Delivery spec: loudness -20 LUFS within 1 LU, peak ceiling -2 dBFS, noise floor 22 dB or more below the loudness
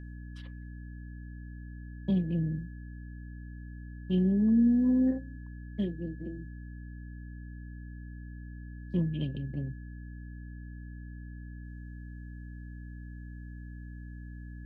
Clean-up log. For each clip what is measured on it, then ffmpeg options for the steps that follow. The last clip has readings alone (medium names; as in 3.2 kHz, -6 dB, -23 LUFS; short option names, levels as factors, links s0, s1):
hum 60 Hz; highest harmonic 300 Hz; hum level -41 dBFS; steady tone 1.7 kHz; tone level -57 dBFS; loudness -30.0 LUFS; peak level -17.5 dBFS; loudness target -20.0 LUFS
-> -af "bandreject=f=60:t=h:w=6,bandreject=f=120:t=h:w=6,bandreject=f=180:t=h:w=6,bandreject=f=240:t=h:w=6,bandreject=f=300:t=h:w=6"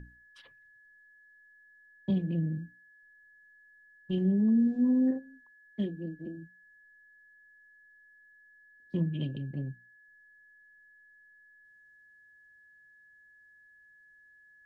hum not found; steady tone 1.7 kHz; tone level -57 dBFS
-> -af "bandreject=f=1700:w=30"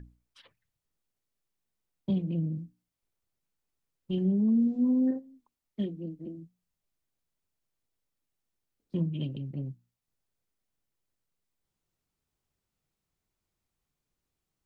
steady tone not found; loudness -30.0 LUFS; peak level -19.0 dBFS; loudness target -20.0 LUFS
-> -af "volume=3.16"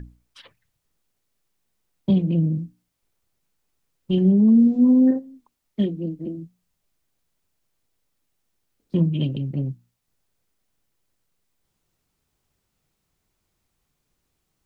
loudness -20.5 LUFS; peak level -9.0 dBFS; noise floor -76 dBFS